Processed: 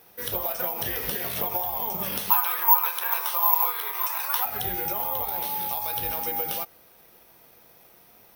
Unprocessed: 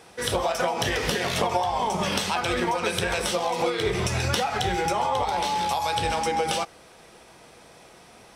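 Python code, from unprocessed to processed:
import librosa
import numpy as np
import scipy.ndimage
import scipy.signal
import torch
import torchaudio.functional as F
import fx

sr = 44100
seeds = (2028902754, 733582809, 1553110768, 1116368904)

y = fx.highpass_res(x, sr, hz=1000.0, q=7.3, at=(2.3, 4.45))
y = (np.kron(scipy.signal.resample_poly(y, 1, 3), np.eye(3)[0]) * 3)[:len(y)]
y = F.gain(torch.from_numpy(y), -8.5).numpy()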